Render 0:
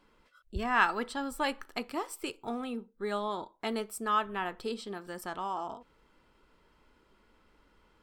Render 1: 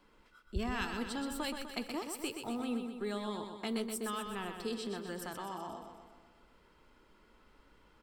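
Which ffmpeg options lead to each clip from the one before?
ffmpeg -i in.wav -filter_complex "[0:a]acrossover=split=360|3000[link_01][link_02][link_03];[link_02]acompressor=threshold=-43dB:ratio=4[link_04];[link_01][link_04][link_03]amix=inputs=3:normalize=0,asplit=2[link_05][link_06];[link_06]aecho=0:1:125|250|375|500|625|750|875:0.473|0.27|0.154|0.0876|0.0499|0.0285|0.0162[link_07];[link_05][link_07]amix=inputs=2:normalize=0" out.wav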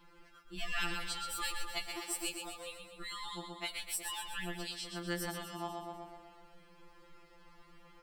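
ffmpeg -i in.wav -filter_complex "[0:a]acrossover=split=110|1400|3600[link_01][link_02][link_03][link_04];[link_02]acompressor=threshold=-48dB:ratio=6[link_05];[link_01][link_05][link_03][link_04]amix=inputs=4:normalize=0,afftfilt=real='re*2.83*eq(mod(b,8),0)':imag='im*2.83*eq(mod(b,8),0)':win_size=2048:overlap=0.75,volume=7dB" out.wav

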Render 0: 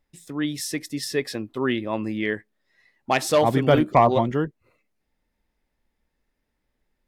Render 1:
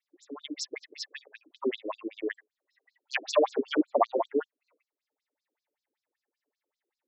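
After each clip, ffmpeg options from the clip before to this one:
ffmpeg -i in.wav -af "afftfilt=real='re*between(b*sr/1024,350*pow(5700/350,0.5+0.5*sin(2*PI*5.2*pts/sr))/1.41,350*pow(5700/350,0.5+0.5*sin(2*PI*5.2*pts/sr))*1.41)':imag='im*between(b*sr/1024,350*pow(5700/350,0.5+0.5*sin(2*PI*5.2*pts/sr))/1.41,350*pow(5700/350,0.5+0.5*sin(2*PI*5.2*pts/sr))*1.41)':win_size=1024:overlap=0.75" out.wav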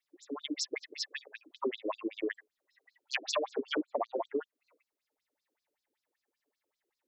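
ffmpeg -i in.wav -af "acompressor=threshold=-31dB:ratio=12,volume=2dB" out.wav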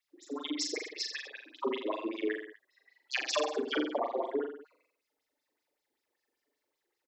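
ffmpeg -i in.wav -af "aecho=1:1:40|84|132.4|185.6|244.2:0.631|0.398|0.251|0.158|0.1" out.wav

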